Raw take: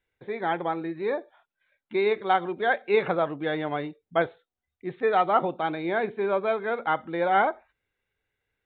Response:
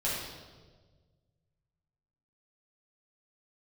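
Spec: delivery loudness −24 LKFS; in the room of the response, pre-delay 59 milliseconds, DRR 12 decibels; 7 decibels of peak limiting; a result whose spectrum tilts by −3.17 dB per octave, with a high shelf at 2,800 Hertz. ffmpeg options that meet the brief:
-filter_complex "[0:a]highshelf=frequency=2800:gain=5,alimiter=limit=-16dB:level=0:latency=1,asplit=2[link_01][link_02];[1:a]atrim=start_sample=2205,adelay=59[link_03];[link_02][link_03]afir=irnorm=-1:irlink=0,volume=-19.5dB[link_04];[link_01][link_04]amix=inputs=2:normalize=0,volume=4dB"

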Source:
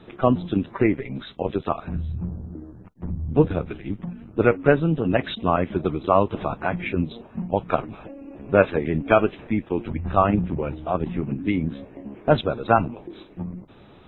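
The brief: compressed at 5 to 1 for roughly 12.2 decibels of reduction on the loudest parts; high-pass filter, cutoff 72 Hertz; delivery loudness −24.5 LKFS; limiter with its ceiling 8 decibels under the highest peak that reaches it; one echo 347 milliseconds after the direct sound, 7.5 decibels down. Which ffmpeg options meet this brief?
ffmpeg -i in.wav -af "highpass=72,acompressor=threshold=-25dB:ratio=5,alimiter=limit=-19dB:level=0:latency=1,aecho=1:1:347:0.422,volume=8dB" out.wav

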